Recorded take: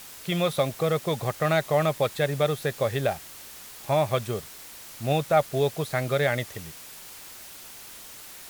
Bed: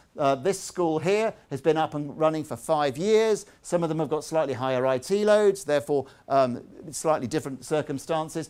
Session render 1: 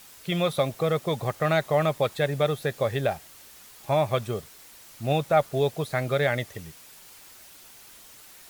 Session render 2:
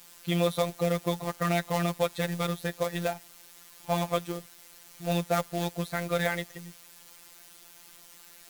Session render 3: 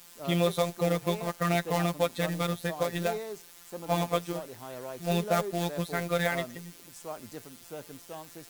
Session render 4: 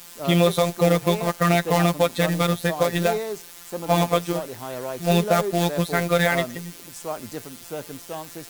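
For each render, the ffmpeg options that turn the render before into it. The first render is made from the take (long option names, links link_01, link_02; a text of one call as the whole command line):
ffmpeg -i in.wav -af "afftdn=noise_reduction=6:noise_floor=-44" out.wav
ffmpeg -i in.wav -af "acrusher=bits=3:mode=log:mix=0:aa=0.000001,afftfilt=real='hypot(re,im)*cos(PI*b)':imag='0':win_size=1024:overlap=0.75" out.wav
ffmpeg -i in.wav -i bed.wav -filter_complex "[1:a]volume=-16.5dB[link_01];[0:a][link_01]amix=inputs=2:normalize=0" out.wav
ffmpeg -i in.wav -af "volume=9dB,alimiter=limit=-2dB:level=0:latency=1" out.wav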